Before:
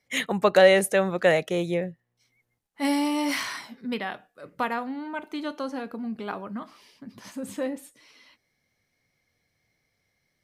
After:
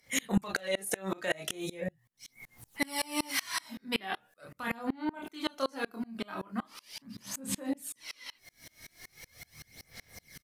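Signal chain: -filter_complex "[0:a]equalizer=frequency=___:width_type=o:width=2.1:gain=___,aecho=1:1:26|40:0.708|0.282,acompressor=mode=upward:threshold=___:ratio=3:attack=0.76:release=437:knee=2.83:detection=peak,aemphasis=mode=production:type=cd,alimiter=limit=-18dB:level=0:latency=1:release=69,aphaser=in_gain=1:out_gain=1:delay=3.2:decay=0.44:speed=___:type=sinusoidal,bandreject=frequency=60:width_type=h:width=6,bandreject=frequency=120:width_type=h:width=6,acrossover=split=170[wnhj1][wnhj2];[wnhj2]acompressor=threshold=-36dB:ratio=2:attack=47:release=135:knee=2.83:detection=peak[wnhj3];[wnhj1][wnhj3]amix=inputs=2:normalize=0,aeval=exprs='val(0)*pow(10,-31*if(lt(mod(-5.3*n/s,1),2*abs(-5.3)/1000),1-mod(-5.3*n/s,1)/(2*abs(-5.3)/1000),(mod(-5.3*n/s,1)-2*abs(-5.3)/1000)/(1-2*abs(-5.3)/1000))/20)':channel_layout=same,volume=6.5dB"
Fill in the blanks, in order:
410, -4, -37dB, 0.4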